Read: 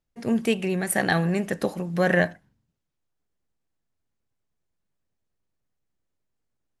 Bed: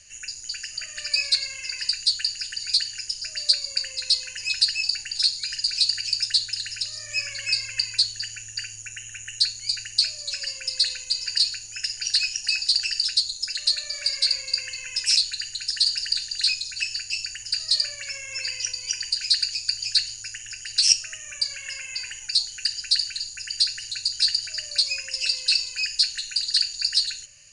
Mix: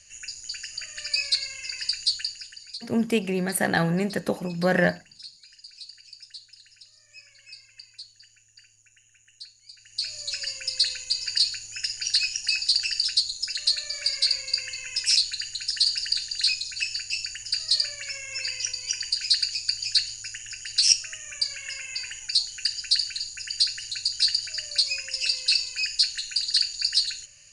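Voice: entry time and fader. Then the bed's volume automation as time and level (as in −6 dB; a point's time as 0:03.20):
2.65 s, −0.5 dB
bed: 0:02.14 −2.5 dB
0:02.98 −21.5 dB
0:09.75 −21.5 dB
0:10.16 −1 dB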